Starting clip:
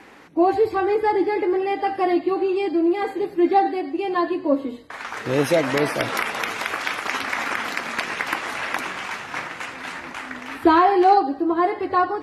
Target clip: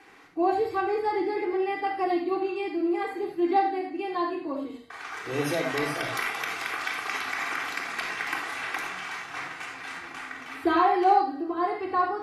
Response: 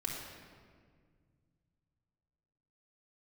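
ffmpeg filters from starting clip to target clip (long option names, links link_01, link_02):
-filter_complex "[0:a]lowshelf=frequency=480:gain=-7.5[link_01];[1:a]atrim=start_sample=2205,atrim=end_sample=4410[link_02];[link_01][link_02]afir=irnorm=-1:irlink=0,volume=-5dB"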